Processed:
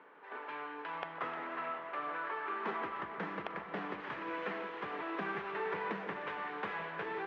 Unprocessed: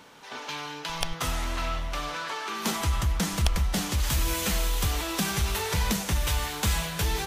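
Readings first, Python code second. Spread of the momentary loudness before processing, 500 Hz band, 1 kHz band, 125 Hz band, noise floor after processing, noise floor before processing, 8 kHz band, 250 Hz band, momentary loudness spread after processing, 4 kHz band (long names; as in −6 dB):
6 LU, −4.5 dB, −5.0 dB, −26.0 dB, −48 dBFS, −41 dBFS, below −40 dB, −12.0 dB, 4 LU, −22.0 dB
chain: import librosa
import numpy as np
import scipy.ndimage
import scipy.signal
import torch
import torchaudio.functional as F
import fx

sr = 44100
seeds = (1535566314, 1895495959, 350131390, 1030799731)

y = fx.cabinet(x, sr, low_hz=220.0, low_slope=24, high_hz=2200.0, hz=(230.0, 410.0, 1100.0, 1700.0), db=(-8, 6, 4, 4))
y = fx.echo_alternate(y, sr, ms=153, hz=940.0, feedback_pct=77, wet_db=-10)
y = y * 10.0 ** (-7.5 / 20.0)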